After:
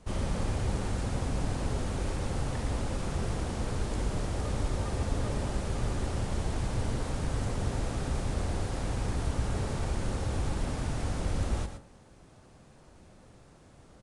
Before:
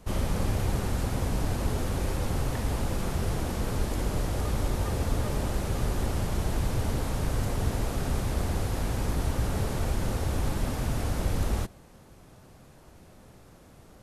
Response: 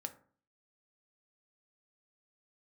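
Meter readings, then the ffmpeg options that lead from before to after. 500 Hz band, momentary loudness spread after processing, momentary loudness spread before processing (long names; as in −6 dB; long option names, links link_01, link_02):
−3.0 dB, 2 LU, 1 LU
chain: -filter_complex "[0:a]asplit=2[link_01][link_02];[1:a]atrim=start_sample=2205,adelay=115[link_03];[link_02][link_03]afir=irnorm=-1:irlink=0,volume=-5.5dB[link_04];[link_01][link_04]amix=inputs=2:normalize=0,aresample=22050,aresample=44100,volume=-3.5dB"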